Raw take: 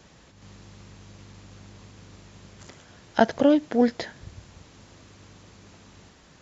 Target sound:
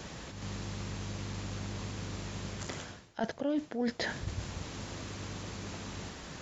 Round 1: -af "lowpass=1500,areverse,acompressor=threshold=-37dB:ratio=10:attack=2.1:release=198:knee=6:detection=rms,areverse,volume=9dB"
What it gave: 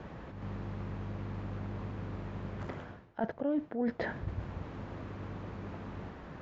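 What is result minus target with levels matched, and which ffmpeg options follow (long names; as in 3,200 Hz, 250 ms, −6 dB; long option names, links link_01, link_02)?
2,000 Hz band −3.0 dB
-af "areverse,acompressor=threshold=-37dB:ratio=10:attack=2.1:release=198:knee=6:detection=rms,areverse,volume=9dB"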